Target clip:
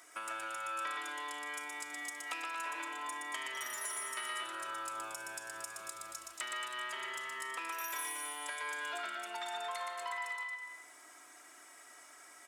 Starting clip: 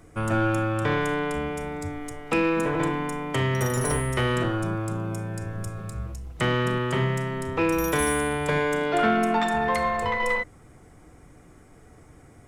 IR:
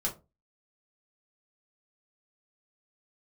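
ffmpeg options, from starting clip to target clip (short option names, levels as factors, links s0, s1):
-filter_complex "[0:a]highpass=1400,equalizer=f=2200:w=1.5:g=-2.5,aecho=1:1:3.1:0.64,acompressor=threshold=0.00562:ratio=6,asplit=2[s0][s1];[s1]aecho=0:1:120|228|325.2|412.7|491.4:0.631|0.398|0.251|0.158|0.1[s2];[s0][s2]amix=inputs=2:normalize=0,volume=1.58"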